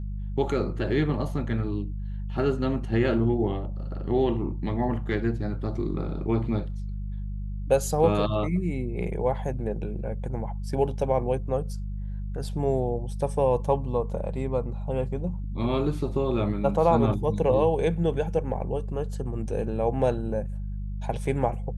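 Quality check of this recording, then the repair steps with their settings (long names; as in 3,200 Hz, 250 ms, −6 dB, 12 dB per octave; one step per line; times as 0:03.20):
mains hum 50 Hz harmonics 4 −32 dBFS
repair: hum removal 50 Hz, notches 4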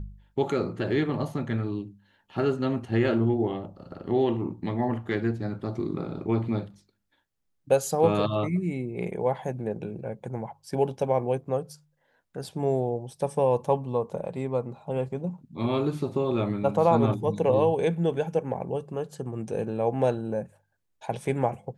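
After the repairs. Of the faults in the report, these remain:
none of them is left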